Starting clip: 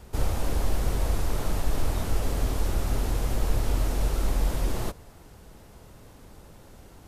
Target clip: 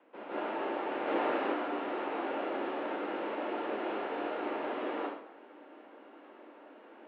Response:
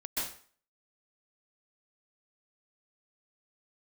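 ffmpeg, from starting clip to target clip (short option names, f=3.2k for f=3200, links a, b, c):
-filter_complex "[0:a]asettb=1/sr,asplit=3[a][b][c];[a]atrim=end=0.904[d];[b]atrim=start=0.9:end=1.34,asetpts=PTS-STARTPTS,afade=t=in:d=0.004:c=qsin,afade=t=out:st=0.436:d=0.004:c=qsin,acontrast=37[e];[c]atrim=start=1.336[f];[d][e]acrossfade=d=0.004:c1=hsin:c2=qsin[g];[g][f]acrossfade=d=0.004:c1=qsin:c2=hsin[h];[1:a]atrim=start_sample=2205,asetrate=34398,aresample=44100[i];[h][i]afir=irnorm=-1:irlink=0,highpass=f=180:t=q:w=0.5412,highpass=f=180:t=q:w=1.307,lowpass=f=2.8k:t=q:w=0.5176,lowpass=f=2.8k:t=q:w=0.7071,lowpass=f=2.8k:t=q:w=1.932,afreqshift=100,volume=-6dB"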